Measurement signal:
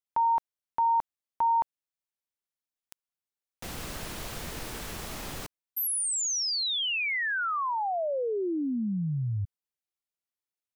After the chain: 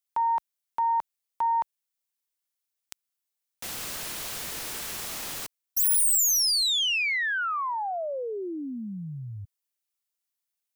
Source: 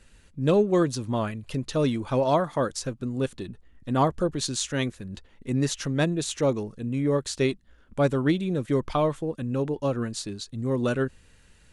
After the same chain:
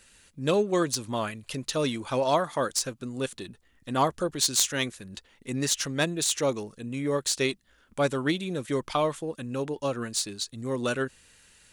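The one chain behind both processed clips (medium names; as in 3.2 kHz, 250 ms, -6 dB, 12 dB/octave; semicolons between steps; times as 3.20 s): tracing distortion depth 0.029 ms; tilt EQ +2.5 dB/octave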